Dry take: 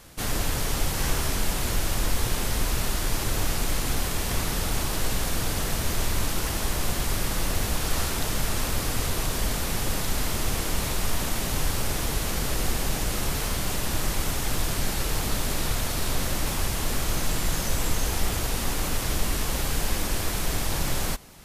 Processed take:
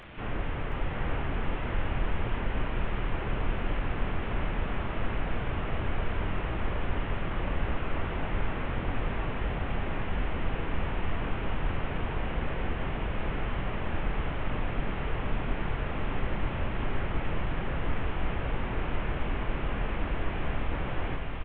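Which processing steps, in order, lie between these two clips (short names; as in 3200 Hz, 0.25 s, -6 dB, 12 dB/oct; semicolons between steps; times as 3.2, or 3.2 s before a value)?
delta modulation 16 kbps, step -35.5 dBFS; doubler 25 ms -12 dB; on a send: feedback echo 0.72 s, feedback 53%, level -4.5 dB; on the sum: gain -5 dB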